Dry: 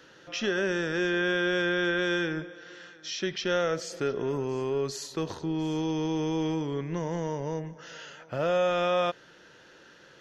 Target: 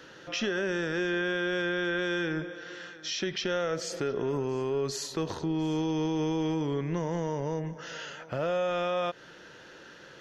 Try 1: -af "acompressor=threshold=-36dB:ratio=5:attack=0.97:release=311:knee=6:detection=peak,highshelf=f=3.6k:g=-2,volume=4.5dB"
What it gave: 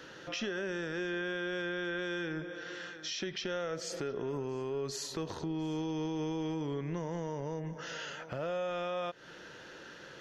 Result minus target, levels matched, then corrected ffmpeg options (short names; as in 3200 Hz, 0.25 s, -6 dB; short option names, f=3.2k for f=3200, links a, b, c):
compressor: peak gain reduction +6.5 dB
-af "acompressor=threshold=-28dB:ratio=5:attack=0.97:release=311:knee=6:detection=peak,highshelf=f=3.6k:g=-2,volume=4.5dB"